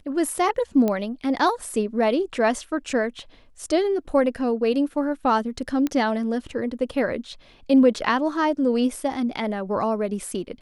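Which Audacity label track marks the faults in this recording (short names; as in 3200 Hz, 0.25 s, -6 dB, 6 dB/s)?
0.880000	0.880000	pop -12 dBFS
5.870000	5.870000	pop -13 dBFS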